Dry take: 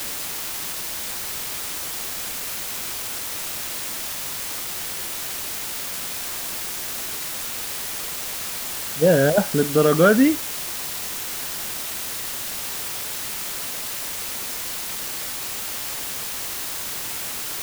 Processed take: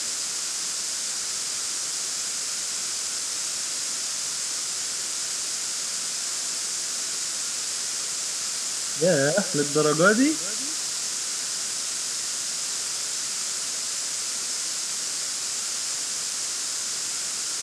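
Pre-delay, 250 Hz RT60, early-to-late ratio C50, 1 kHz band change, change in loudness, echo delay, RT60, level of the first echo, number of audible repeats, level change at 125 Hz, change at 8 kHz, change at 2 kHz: no reverb, no reverb, no reverb, -2.5 dB, -0.5 dB, 412 ms, no reverb, -23.5 dB, 1, -7.0 dB, +5.5 dB, -2.0 dB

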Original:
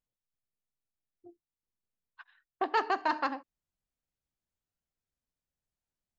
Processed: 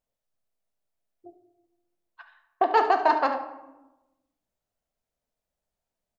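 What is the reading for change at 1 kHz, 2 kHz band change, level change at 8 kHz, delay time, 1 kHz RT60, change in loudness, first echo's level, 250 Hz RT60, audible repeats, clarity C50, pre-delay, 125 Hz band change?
+9.0 dB, +4.0 dB, no reading, 72 ms, 0.95 s, +8.5 dB, -12.5 dB, 1.3 s, 1, 8.5 dB, 3 ms, no reading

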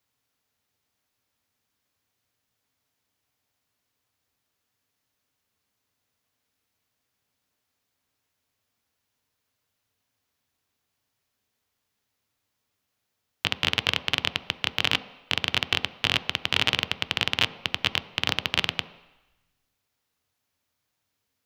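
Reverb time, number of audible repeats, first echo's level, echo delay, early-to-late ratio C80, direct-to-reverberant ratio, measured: 1.0 s, no echo, no echo, no echo, 17.0 dB, 11.5 dB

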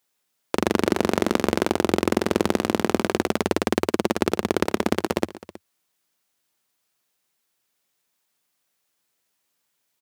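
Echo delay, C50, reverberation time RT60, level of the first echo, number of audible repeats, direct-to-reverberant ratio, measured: 116 ms, no reverb, no reverb, -19.5 dB, 2, no reverb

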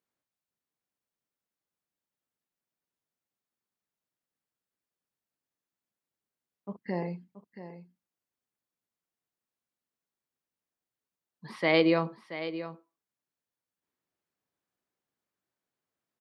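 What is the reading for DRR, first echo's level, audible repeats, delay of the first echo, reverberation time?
no reverb, -12.5 dB, 1, 678 ms, no reverb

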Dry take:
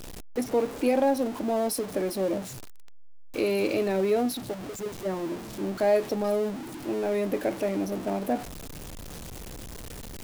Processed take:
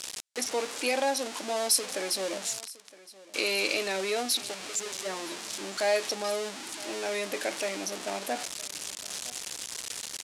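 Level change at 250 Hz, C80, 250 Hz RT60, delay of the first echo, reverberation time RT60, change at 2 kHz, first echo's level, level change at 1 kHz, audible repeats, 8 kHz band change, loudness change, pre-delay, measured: -11.5 dB, no reverb, no reverb, 965 ms, no reverb, +6.0 dB, -20.0 dB, -1.5 dB, 1, +10.0 dB, -2.5 dB, no reverb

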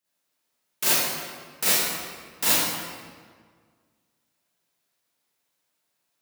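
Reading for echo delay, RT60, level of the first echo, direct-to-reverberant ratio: no echo, 1.7 s, no echo, -11.0 dB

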